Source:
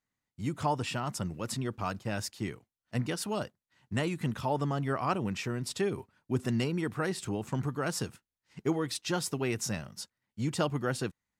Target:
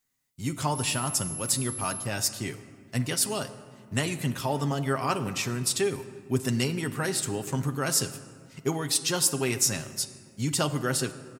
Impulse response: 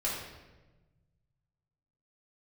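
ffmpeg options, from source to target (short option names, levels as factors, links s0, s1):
-filter_complex "[0:a]crystalizer=i=3:c=0,asettb=1/sr,asplit=3[s0][s1][s2];[s0]atrim=end=0.754[s3];[s1]atrim=start=0.75:end=2.05,asetpts=PTS-STARTPTS,afade=t=in:d=0.004:c=qsin,afade=t=out:st=1.296:d=0.004:c=qsin,aeval=exprs='val(0)+0.0178*sin(2*PI*11000*n/s)':c=same[s4];[s2]atrim=start=2.046[s5];[s3][s4]acrossfade=d=0.004:c1=hsin:c2=qsin[s6];[s6][s5]acrossfade=d=0.004:c1=qsin:c2=hsin,aecho=1:1:7.5:0.38,asplit=2[s7][s8];[1:a]atrim=start_sample=2205,asetrate=22491,aresample=44100[s9];[s8][s9]afir=irnorm=-1:irlink=0,volume=0.1[s10];[s7][s10]amix=inputs=2:normalize=0"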